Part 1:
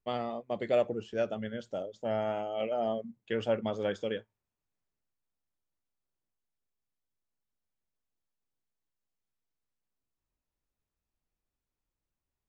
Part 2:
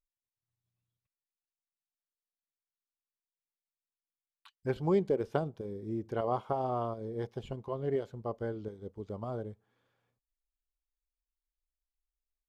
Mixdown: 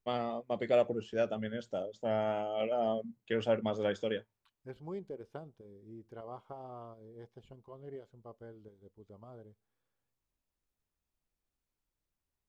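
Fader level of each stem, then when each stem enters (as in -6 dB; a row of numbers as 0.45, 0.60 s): -0.5, -14.0 dB; 0.00, 0.00 s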